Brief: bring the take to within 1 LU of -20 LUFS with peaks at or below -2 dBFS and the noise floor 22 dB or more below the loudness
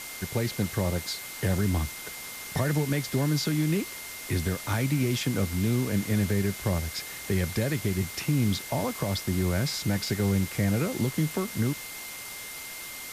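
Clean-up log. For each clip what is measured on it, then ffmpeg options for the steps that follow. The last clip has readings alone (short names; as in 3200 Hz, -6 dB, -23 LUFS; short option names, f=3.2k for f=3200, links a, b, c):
steady tone 2100 Hz; tone level -43 dBFS; noise floor -40 dBFS; noise floor target -51 dBFS; loudness -28.5 LUFS; peak -15.0 dBFS; loudness target -20.0 LUFS
-> -af "bandreject=f=2.1k:w=30"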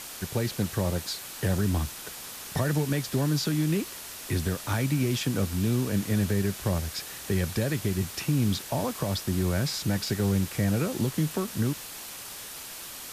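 steady tone none; noise floor -41 dBFS; noise floor target -51 dBFS
-> -af "afftdn=nr=10:nf=-41"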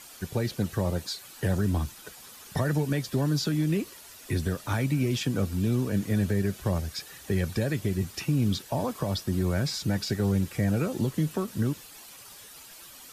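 noise floor -48 dBFS; noise floor target -51 dBFS
-> -af "afftdn=nr=6:nf=-48"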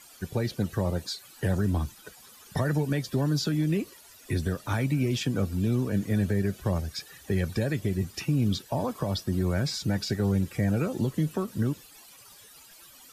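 noise floor -52 dBFS; loudness -29.0 LUFS; peak -16.0 dBFS; loudness target -20.0 LUFS
-> -af "volume=9dB"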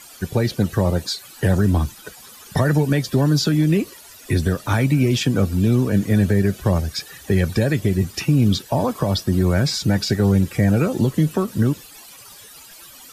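loudness -20.0 LUFS; peak -7.0 dBFS; noise floor -43 dBFS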